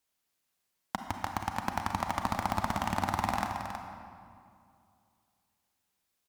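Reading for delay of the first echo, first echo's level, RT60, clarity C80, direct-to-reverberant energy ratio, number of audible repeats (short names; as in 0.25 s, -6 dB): 0.32 s, -8.5 dB, 2.4 s, 4.0 dB, 2.5 dB, 1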